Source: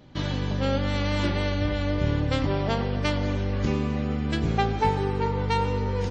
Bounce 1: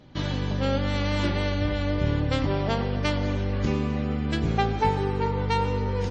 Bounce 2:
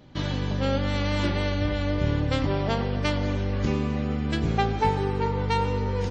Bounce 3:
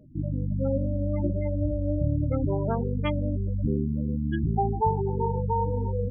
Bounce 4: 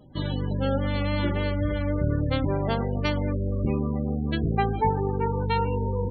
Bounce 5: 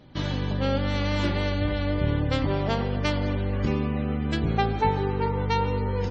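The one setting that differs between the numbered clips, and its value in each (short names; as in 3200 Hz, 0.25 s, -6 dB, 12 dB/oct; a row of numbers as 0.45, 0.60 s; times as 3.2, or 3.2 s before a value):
spectral gate, under each frame's peak: -45, -60, -10, -20, -35 dB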